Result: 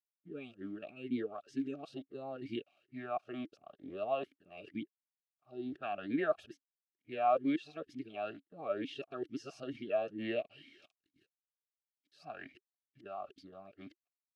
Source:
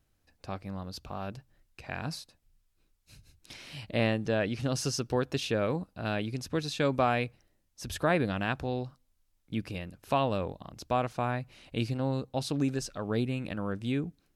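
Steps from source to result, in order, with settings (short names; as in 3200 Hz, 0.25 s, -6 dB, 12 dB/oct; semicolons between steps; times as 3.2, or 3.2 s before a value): whole clip reversed; crossover distortion -56 dBFS; notch comb 500 Hz; vowel sweep a-i 2.2 Hz; gain +3.5 dB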